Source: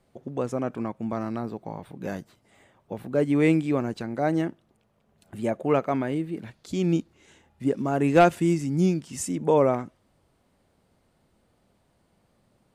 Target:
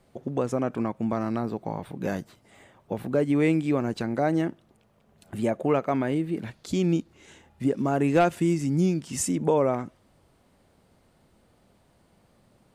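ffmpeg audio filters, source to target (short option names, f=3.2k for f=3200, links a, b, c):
-af "acompressor=threshold=-28dB:ratio=2,volume=4.5dB"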